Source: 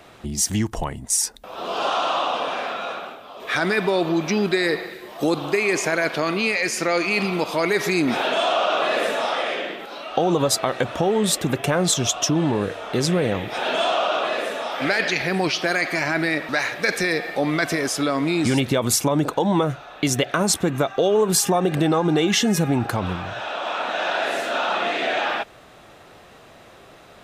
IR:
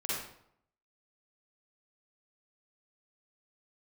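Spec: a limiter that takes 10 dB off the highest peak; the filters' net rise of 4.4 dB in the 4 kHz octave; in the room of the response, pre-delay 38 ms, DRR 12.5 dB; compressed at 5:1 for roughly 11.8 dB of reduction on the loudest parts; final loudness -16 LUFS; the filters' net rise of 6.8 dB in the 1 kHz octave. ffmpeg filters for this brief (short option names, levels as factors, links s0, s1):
-filter_complex "[0:a]equalizer=f=1000:t=o:g=9,equalizer=f=4000:t=o:g=5,acompressor=threshold=0.0447:ratio=5,alimiter=limit=0.1:level=0:latency=1,asplit=2[s0][s1];[1:a]atrim=start_sample=2205,adelay=38[s2];[s1][s2]afir=irnorm=-1:irlink=0,volume=0.133[s3];[s0][s3]amix=inputs=2:normalize=0,volume=5.01"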